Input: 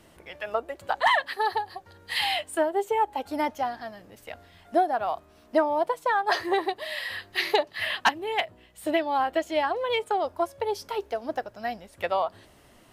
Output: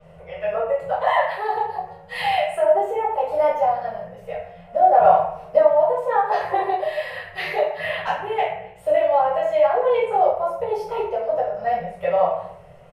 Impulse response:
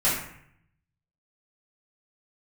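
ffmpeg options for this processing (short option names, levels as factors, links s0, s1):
-filter_complex "[0:a]firequalizer=gain_entry='entry(100,0);entry(170,8);entry(260,-25);entry(460,10);entry(890,2);entry(1600,-5);entry(2600,-3);entry(4000,-11);entry(15000,-19)':delay=0.05:min_phase=1,alimiter=limit=0.15:level=0:latency=1:release=82,asettb=1/sr,asplit=3[s0][s1][s2];[s0]atrim=end=4.914[s3];[s1]atrim=start=4.91:end=5.59,asetpts=PTS-STARTPTS,afade=t=in:d=0.004:c=qsin,afade=t=out:st=0.676:d=0.004:c=qsin,acontrast=28[s4];[s2]atrim=start=5.586[s5];[s3][s4]acrossfade=d=0.004:c1=hsin:c2=qsin[s6];[s6][s5]acrossfade=d=0.004:c1=qsin:c2=hsin[s7];[1:a]atrim=start_sample=2205[s8];[s7][s8]afir=irnorm=-1:irlink=0,adynamicequalizer=threshold=0.01:dfrequency=7700:dqfactor=0.7:tfrequency=7700:tqfactor=0.7:attack=5:release=100:ratio=0.375:range=3.5:mode=boostabove:tftype=highshelf,volume=0.398"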